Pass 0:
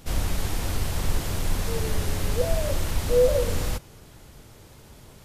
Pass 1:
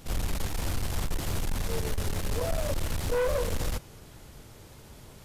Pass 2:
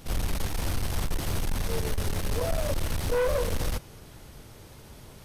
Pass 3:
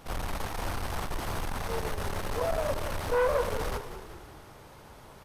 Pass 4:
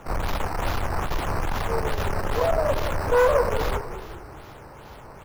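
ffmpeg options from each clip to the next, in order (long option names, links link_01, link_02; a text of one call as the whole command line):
ffmpeg -i in.wav -af "aeval=exprs='(tanh(15.8*val(0)+0.3)-tanh(0.3))/15.8':channel_layout=same" out.wav
ffmpeg -i in.wav -af "bandreject=frequency=7200:width=12,volume=1.5dB" out.wav
ffmpeg -i in.wav -filter_complex "[0:a]equalizer=frequency=1000:width_type=o:width=2.3:gain=11.5,asplit=2[link_01][link_02];[link_02]asplit=6[link_03][link_04][link_05][link_06][link_07][link_08];[link_03]adelay=187,afreqshift=-32,volume=-11dB[link_09];[link_04]adelay=374,afreqshift=-64,volume=-16dB[link_10];[link_05]adelay=561,afreqshift=-96,volume=-21.1dB[link_11];[link_06]adelay=748,afreqshift=-128,volume=-26.1dB[link_12];[link_07]adelay=935,afreqshift=-160,volume=-31.1dB[link_13];[link_08]adelay=1122,afreqshift=-192,volume=-36.2dB[link_14];[link_09][link_10][link_11][link_12][link_13][link_14]amix=inputs=6:normalize=0[link_15];[link_01][link_15]amix=inputs=2:normalize=0,volume=-7dB" out.wav
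ffmpeg -i in.wav -filter_complex "[0:a]equalizer=frequency=220:width_type=o:width=0.77:gain=-2.5,acrossover=split=110|1800[link_01][link_02][link_03];[link_03]acrusher=samples=9:mix=1:aa=0.000001:lfo=1:lforange=9:lforate=2.4[link_04];[link_01][link_02][link_04]amix=inputs=3:normalize=0,volume=7.5dB" out.wav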